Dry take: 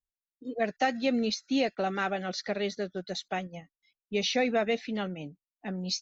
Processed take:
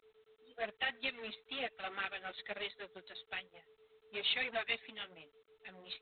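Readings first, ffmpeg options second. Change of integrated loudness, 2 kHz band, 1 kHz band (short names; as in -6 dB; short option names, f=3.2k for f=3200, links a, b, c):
-9.0 dB, -4.0 dB, -13.0 dB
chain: -filter_complex "[0:a]acrossover=split=1500[a][b];[a]aeval=exprs='val(0)*(1-0.7/2+0.7/2*cos(2*PI*3.1*n/s))':c=same[c];[b]aeval=exprs='val(0)*(1-0.7/2-0.7/2*cos(2*PI*3.1*n/s))':c=same[d];[c][d]amix=inputs=2:normalize=0,asplit=2[e][f];[f]acrusher=bits=4:mix=0:aa=0.5,volume=-6.5dB[g];[e][g]amix=inputs=2:normalize=0,aeval=exprs='val(0)+0.00562*sin(2*PI*440*n/s)':c=same,aderivative,flanger=delay=0.9:depth=8.6:regen=2:speed=1.1:shape=triangular,volume=10dB" -ar 8000 -c:a adpcm_g726 -b:a 24k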